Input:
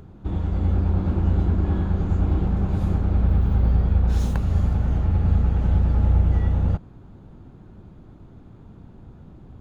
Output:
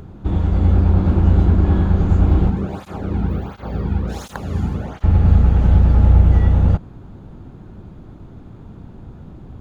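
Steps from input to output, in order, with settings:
0:02.50–0:05.04: through-zero flanger with one copy inverted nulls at 1.4 Hz, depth 1.9 ms
level +7 dB

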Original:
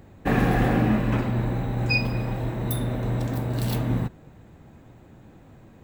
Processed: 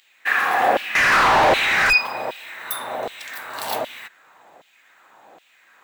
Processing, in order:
auto-filter high-pass saw down 1.3 Hz 590–3,200 Hz
0:00.95–0:01.93: mid-hump overdrive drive 34 dB, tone 2,100 Hz, clips at −13 dBFS
level +6 dB

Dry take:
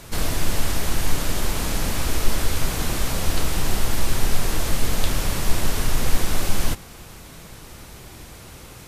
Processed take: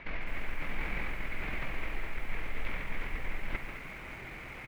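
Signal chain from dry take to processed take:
parametric band 89 Hz −7 dB 0.89 octaves
mains-hum notches 60/120/180/240/300/360/420/480 Hz
reversed playback
downward compressor 4 to 1, threshold −29 dBFS, peak gain reduction 17.5 dB
reversed playback
tempo change 1.9×
transistor ladder low-pass 2,400 Hz, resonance 70%
tuned comb filter 63 Hz, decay 0.18 s, harmonics all, mix 30%
single-tap delay 141 ms −10.5 dB
on a send at −12 dB: convolution reverb RT60 1.9 s, pre-delay 83 ms
on the sum: feedback echo at a low word length 209 ms, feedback 35%, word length 10 bits, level −10 dB
level +9.5 dB

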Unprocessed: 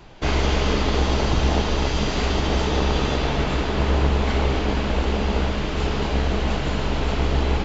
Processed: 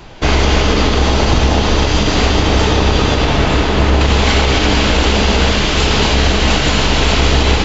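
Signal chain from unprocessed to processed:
high-shelf EQ 2,200 Hz +2.5 dB, from 0:04.01 +11.5 dB
convolution reverb RT60 4.7 s, pre-delay 4 ms, DRR 9 dB
boost into a limiter +10 dB
level −1 dB

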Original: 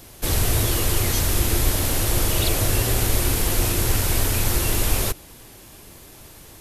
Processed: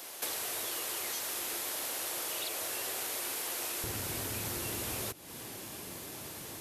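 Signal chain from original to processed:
high-pass filter 540 Hz 12 dB per octave, from 0:03.84 130 Hz
downward compressor 8 to 1, threshold −36 dBFS, peak gain reduction 15 dB
level +1.5 dB

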